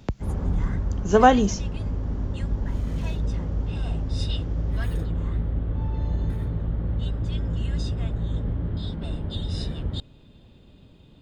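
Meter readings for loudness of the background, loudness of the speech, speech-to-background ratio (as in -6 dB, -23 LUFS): -29.0 LUFS, -20.0 LUFS, 9.0 dB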